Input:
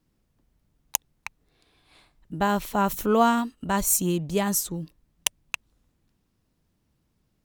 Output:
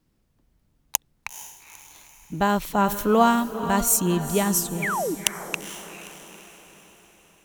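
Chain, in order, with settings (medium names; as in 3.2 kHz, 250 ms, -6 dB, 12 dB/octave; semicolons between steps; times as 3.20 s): painted sound fall, 4.82–5.15 s, 270–2500 Hz -28 dBFS; echo that smears into a reverb 461 ms, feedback 50%, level -11.5 dB; trim +2 dB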